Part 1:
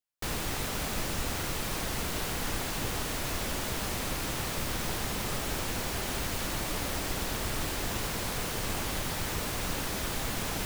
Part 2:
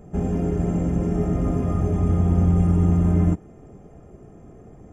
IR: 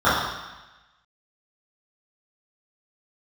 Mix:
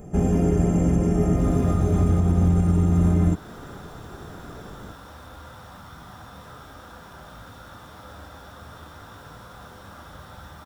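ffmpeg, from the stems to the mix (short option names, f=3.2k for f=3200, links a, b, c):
-filter_complex "[0:a]flanger=delay=0.9:depth=9.2:regen=-62:speed=0.21:shape=sinusoidal,adelay=1150,volume=-18.5dB,asplit=2[a][b];[b]volume=-10dB[c];[1:a]highshelf=f=5.7k:g=10,volume=3dB[d];[2:a]atrim=start_sample=2205[e];[c][e]afir=irnorm=-1:irlink=0[f];[a][d][f]amix=inputs=3:normalize=0,alimiter=limit=-10.5dB:level=0:latency=1:release=220"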